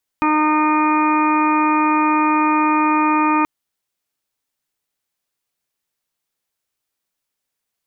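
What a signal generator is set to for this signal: steady additive tone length 3.23 s, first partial 306 Hz, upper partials -16/-1/-2/-18/-15.5/-17.5/-8 dB, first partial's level -17 dB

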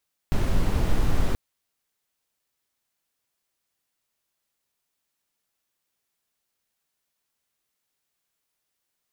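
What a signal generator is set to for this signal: noise brown, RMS -19.5 dBFS 1.03 s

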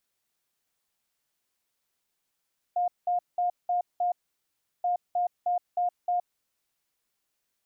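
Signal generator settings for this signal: beep pattern sine 711 Hz, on 0.12 s, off 0.19 s, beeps 5, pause 0.72 s, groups 2, -23 dBFS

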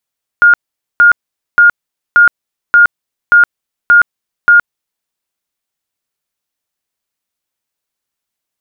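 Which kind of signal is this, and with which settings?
tone bursts 1.42 kHz, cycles 167, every 0.58 s, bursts 8, -2 dBFS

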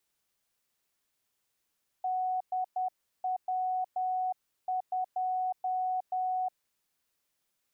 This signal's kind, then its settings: Morse "DW2" 10 wpm 741 Hz -28 dBFS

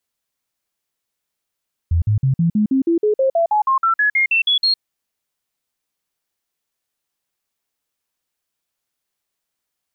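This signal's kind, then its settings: stepped sine 83.9 Hz up, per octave 3, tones 18, 0.11 s, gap 0.05 s -12.5 dBFS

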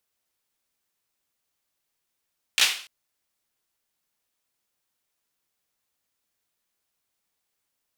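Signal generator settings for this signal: hand clap length 0.29 s, bursts 3, apart 16 ms, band 2.9 kHz, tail 0.44 s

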